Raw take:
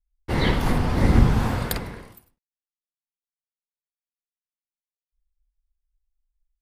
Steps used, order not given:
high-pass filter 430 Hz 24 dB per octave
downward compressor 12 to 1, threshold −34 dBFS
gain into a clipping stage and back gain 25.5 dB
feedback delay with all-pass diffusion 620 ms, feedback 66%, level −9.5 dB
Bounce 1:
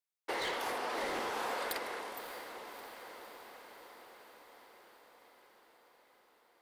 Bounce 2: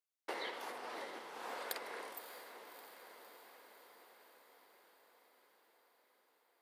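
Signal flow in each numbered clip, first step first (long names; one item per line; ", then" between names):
high-pass filter, then gain into a clipping stage and back, then downward compressor, then feedback delay with all-pass diffusion
downward compressor, then high-pass filter, then gain into a clipping stage and back, then feedback delay with all-pass diffusion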